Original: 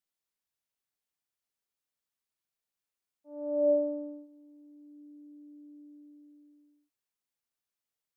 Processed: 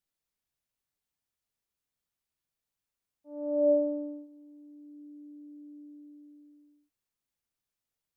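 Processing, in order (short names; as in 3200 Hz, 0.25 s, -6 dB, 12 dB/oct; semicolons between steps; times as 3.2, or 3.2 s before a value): low shelf 190 Hz +10.5 dB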